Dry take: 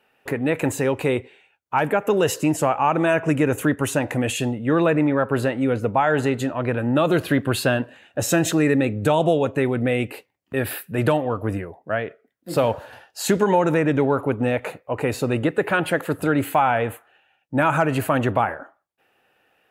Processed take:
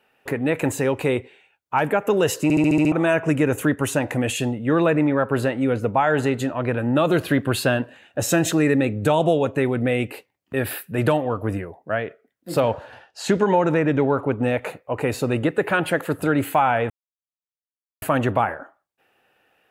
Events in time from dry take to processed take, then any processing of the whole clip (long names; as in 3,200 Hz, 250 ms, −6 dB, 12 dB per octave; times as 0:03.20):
0:02.43: stutter in place 0.07 s, 7 plays
0:12.60–0:14.43: high-frequency loss of the air 67 metres
0:16.90–0:18.02: silence